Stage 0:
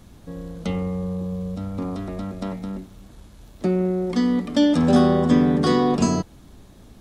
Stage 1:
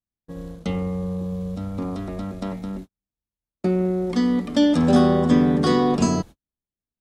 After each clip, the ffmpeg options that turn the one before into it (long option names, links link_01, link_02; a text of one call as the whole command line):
ffmpeg -i in.wav -af "agate=range=-49dB:threshold=-34dB:ratio=16:detection=peak" out.wav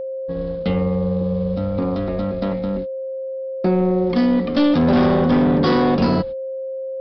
ffmpeg -i in.wav -af "aresample=11025,asoftclip=type=tanh:threshold=-18.5dB,aresample=44100,aeval=exprs='val(0)+0.0282*sin(2*PI*530*n/s)':channel_layout=same,volume=6.5dB" out.wav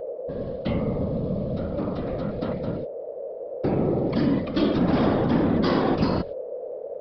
ffmpeg -i in.wav -af "afftfilt=real='hypot(re,im)*cos(2*PI*random(0))':imag='hypot(re,im)*sin(2*PI*random(1))':win_size=512:overlap=0.75" out.wav